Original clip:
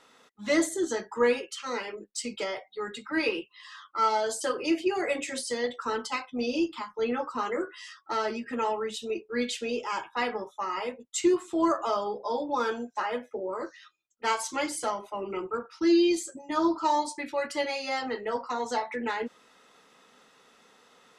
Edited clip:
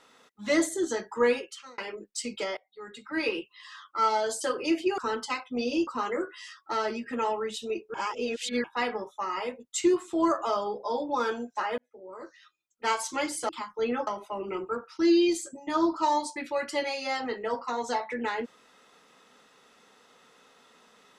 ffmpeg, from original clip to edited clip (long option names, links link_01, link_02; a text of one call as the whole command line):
ffmpeg -i in.wav -filter_complex "[0:a]asplit=10[link_01][link_02][link_03][link_04][link_05][link_06][link_07][link_08][link_09][link_10];[link_01]atrim=end=1.78,asetpts=PTS-STARTPTS,afade=type=out:start_time=1.37:duration=0.41[link_11];[link_02]atrim=start=1.78:end=2.57,asetpts=PTS-STARTPTS,afade=type=in:duration=0.004:curve=hsin,afade=type=out:start_time=0.786:duration=0.004:curve=hsin:silence=0.0668344[link_12];[link_03]atrim=start=2.57:end=4.982,asetpts=PTS-STARTPTS,afade=type=in:duration=0.81:silence=0.0668344[link_13];[link_04]atrim=start=5.798:end=6.692[link_14];[link_05]atrim=start=7.268:end=9.342[link_15];[link_06]atrim=start=9.338:end=10.042,asetpts=PTS-STARTPTS,areverse[link_16];[link_07]atrim=start=10.038:end=13.18,asetpts=PTS-STARTPTS,afade=type=out:start_time=3.138:duration=0.004:curve=hsin[link_17];[link_08]atrim=start=13.18:end=14.892,asetpts=PTS-STARTPTS,afade=type=in:duration=1.09[link_18];[link_09]atrim=start=6.688:end=7.272[link_19];[link_10]atrim=start=14.888[link_20];[link_11][link_12][link_13]concat=n=3:v=0:a=1[link_21];[link_21][link_14]acrossfade=duration=0.004:curve1=hsin:curve2=hsin[link_22];[link_22][link_15]acrossfade=duration=0.004:curve1=hsin:curve2=hsin[link_23];[link_23][link_16]acrossfade=duration=0.004:curve1=hsin:curve2=hsin[link_24];[link_17][link_18]concat=n=2:v=0:a=1[link_25];[link_24][link_25]acrossfade=duration=0.004:curve1=hsin:curve2=hsin[link_26];[link_26][link_19]acrossfade=duration=0.004:curve1=hsin:curve2=hsin[link_27];[link_27][link_20]acrossfade=duration=0.004:curve1=hsin:curve2=hsin" out.wav